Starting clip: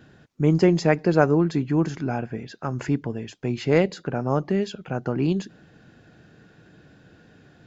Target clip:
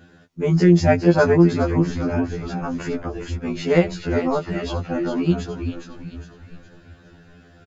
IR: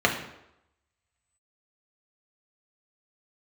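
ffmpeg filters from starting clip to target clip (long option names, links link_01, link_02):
-filter_complex "[0:a]asplit=2[link_01][link_02];[link_02]asplit=5[link_03][link_04][link_05][link_06][link_07];[link_03]adelay=412,afreqshift=-59,volume=-7dB[link_08];[link_04]adelay=824,afreqshift=-118,volume=-14.1dB[link_09];[link_05]adelay=1236,afreqshift=-177,volume=-21.3dB[link_10];[link_06]adelay=1648,afreqshift=-236,volume=-28.4dB[link_11];[link_07]adelay=2060,afreqshift=-295,volume=-35.5dB[link_12];[link_08][link_09][link_10][link_11][link_12]amix=inputs=5:normalize=0[link_13];[link_01][link_13]amix=inputs=2:normalize=0,afftfilt=real='re*2*eq(mod(b,4),0)':imag='im*2*eq(mod(b,4),0)':win_size=2048:overlap=0.75,volume=4.5dB"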